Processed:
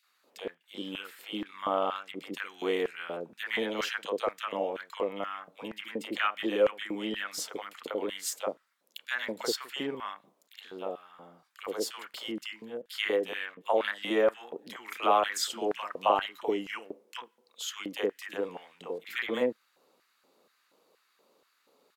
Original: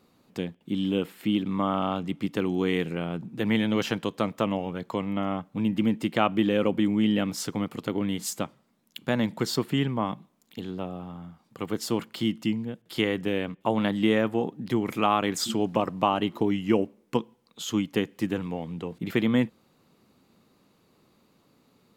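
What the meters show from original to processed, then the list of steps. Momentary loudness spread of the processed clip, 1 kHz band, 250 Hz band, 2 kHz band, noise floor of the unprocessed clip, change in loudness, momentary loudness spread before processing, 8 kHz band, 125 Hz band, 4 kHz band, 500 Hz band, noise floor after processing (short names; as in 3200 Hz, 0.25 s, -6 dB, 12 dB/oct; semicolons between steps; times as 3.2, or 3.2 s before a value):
15 LU, -2.0 dB, -13.5 dB, 0.0 dB, -65 dBFS, -5.0 dB, 11 LU, -2.0 dB, -22.5 dB, -2.0 dB, -2.0 dB, -72 dBFS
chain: three bands offset in time highs, mids, lows 30/70 ms, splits 620/2200 Hz; LFO high-pass square 2.1 Hz 510–1600 Hz; gain -2 dB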